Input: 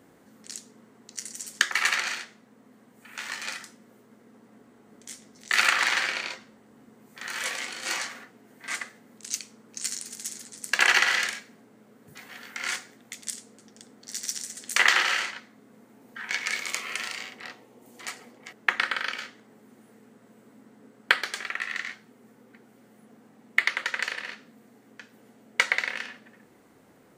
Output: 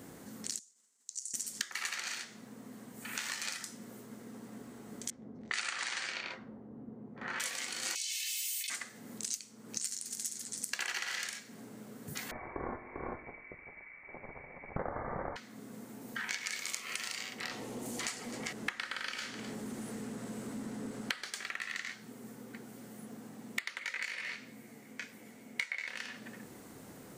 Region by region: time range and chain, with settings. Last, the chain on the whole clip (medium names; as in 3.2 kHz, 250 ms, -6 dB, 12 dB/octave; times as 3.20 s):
0.59–1.34 s: expander -51 dBFS + band-pass filter 7.2 kHz, Q 2.3 + compression 2:1, threshold -51 dBFS
5.10–7.40 s: level-controlled noise filter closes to 610 Hz, open at -21 dBFS + brick-wall FIR low-pass 9.7 kHz
7.95–8.70 s: steep high-pass 2.5 kHz 48 dB/octave + comb 2.3 ms, depth 90% + level flattener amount 100%
12.31–15.36 s: frequency inversion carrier 2.5 kHz + feedback comb 51 Hz, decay 1.8 s, mix 40% + delay 397 ms -6.5 dB
17.51–21.30 s: companding laws mixed up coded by mu + low-pass 11 kHz + delay 257 ms -21 dB
23.79–25.87 s: peaking EQ 2.2 kHz +11.5 dB 0.33 oct + detune thickener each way 12 cents
whole clip: tone controls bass +5 dB, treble +8 dB; compression 6:1, threshold -40 dBFS; trim +4 dB